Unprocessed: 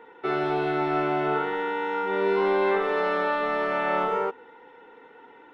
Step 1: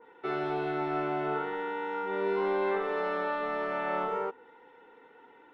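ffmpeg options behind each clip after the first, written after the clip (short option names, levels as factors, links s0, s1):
-af "adynamicequalizer=threshold=0.01:dfrequency=2000:dqfactor=0.7:tfrequency=2000:tqfactor=0.7:attack=5:release=100:ratio=0.375:range=1.5:mode=cutabove:tftype=highshelf,volume=0.501"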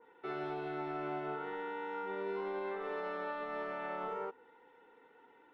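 -af "alimiter=limit=0.0631:level=0:latency=1:release=123,volume=0.473"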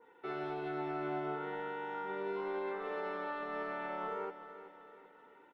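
-af "aecho=1:1:381|762|1143|1524|1905:0.237|0.111|0.0524|0.0246|0.0116"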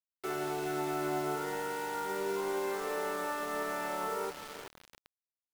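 -af "acrusher=bits=7:mix=0:aa=0.000001,volume=1.58"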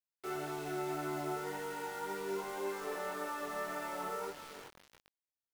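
-af "flanger=delay=19.5:depth=2.5:speed=1.8,volume=0.841"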